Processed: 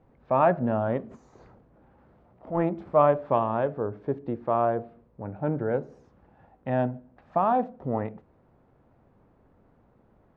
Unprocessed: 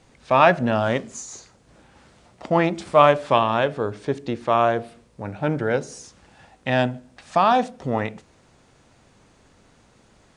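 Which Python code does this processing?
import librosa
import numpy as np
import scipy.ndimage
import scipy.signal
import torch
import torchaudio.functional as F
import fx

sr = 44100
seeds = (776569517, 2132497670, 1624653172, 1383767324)

y = fx.transient(x, sr, attack_db=-9, sustain_db=8, at=(1.1, 2.61), fade=0.02)
y = scipy.signal.sosfilt(scipy.signal.butter(2, 1000.0, 'lowpass', fs=sr, output='sos'), y)
y = y * librosa.db_to_amplitude(-4.0)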